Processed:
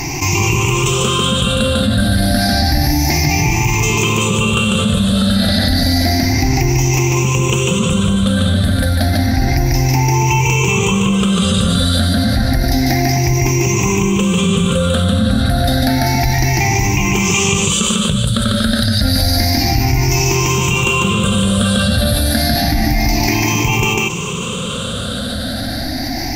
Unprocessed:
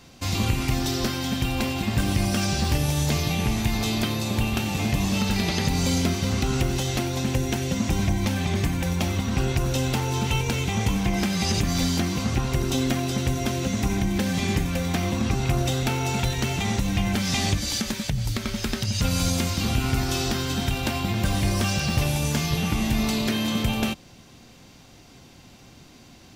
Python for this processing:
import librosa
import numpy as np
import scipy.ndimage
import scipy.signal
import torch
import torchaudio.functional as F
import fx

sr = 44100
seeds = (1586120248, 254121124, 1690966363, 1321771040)

y = fx.spec_ripple(x, sr, per_octave=0.73, drift_hz=0.3, depth_db=22)
y = y + 10.0 ** (-3.0 / 20.0) * np.pad(y, (int(147 * sr / 1000.0), 0))[:len(y)]
y = fx.env_flatten(y, sr, amount_pct=70)